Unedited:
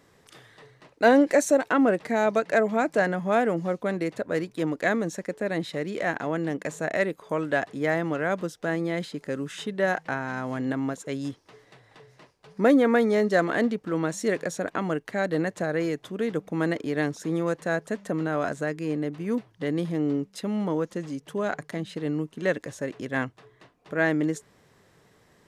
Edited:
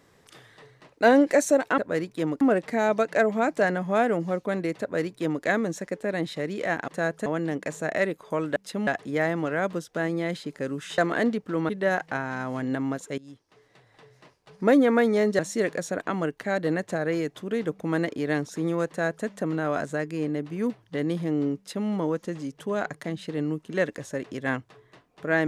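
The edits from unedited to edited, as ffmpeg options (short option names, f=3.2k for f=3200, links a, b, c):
-filter_complex "[0:a]asplit=11[a][b][c][d][e][f][g][h][i][j][k];[a]atrim=end=1.782[l];[b]atrim=start=4.178:end=4.812[m];[c]atrim=start=1.778:end=6.252[n];[d]atrim=start=17.558:end=17.942[o];[e]atrim=start=6.248:end=7.552[p];[f]atrim=start=20.248:end=20.562[q];[g]atrim=start=7.548:end=9.662[r];[h]atrim=start=13.358:end=14.072[s];[i]atrim=start=9.658:end=11.15,asetpts=PTS-STARTPTS,afade=t=out:st=1.488:d=0.004:c=hsin:silence=0.1[t];[j]atrim=start=11.15:end=13.362,asetpts=PTS-STARTPTS,afade=t=in:d=1.55:c=qsin:silence=0.1[u];[k]atrim=start=14.068[v];[l][m]acrossfade=d=0.004:c1=hsin:c2=hsin[w];[w][n]acrossfade=d=0.004:c1=hsin:c2=hsin[x];[x][o]acrossfade=d=0.004:c1=hsin:c2=hsin[y];[y][p]acrossfade=d=0.004:c1=hsin:c2=hsin[z];[z][q]acrossfade=d=0.004:c1=hsin:c2=hsin[aa];[aa][r]acrossfade=d=0.004:c1=hsin:c2=hsin[ab];[ab][s]acrossfade=d=0.004:c1=hsin:c2=hsin[ac];[t][u]concat=n=2:v=0:a=1[ad];[ac][ad]acrossfade=d=0.004:c1=hsin:c2=hsin[ae];[ae][v]acrossfade=d=0.004:c1=hsin:c2=hsin"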